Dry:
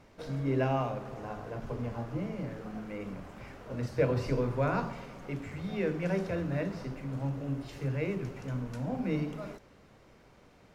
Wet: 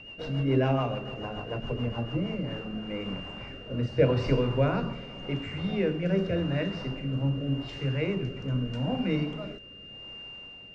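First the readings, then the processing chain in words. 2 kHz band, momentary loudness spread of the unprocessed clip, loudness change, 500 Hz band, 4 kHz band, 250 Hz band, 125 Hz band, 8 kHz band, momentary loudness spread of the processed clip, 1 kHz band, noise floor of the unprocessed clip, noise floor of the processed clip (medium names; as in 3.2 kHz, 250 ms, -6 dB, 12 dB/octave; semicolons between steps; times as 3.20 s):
+4.5 dB, 12 LU, +4.5 dB, +4.0 dB, +14.0 dB, +5.0 dB, +5.0 dB, no reading, 15 LU, +1.0 dB, -59 dBFS, -47 dBFS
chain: whistle 2.8 kHz -45 dBFS; distance through air 110 m; rotary cabinet horn 7 Hz, later 0.85 Hz, at 1.95 s; trim +6.5 dB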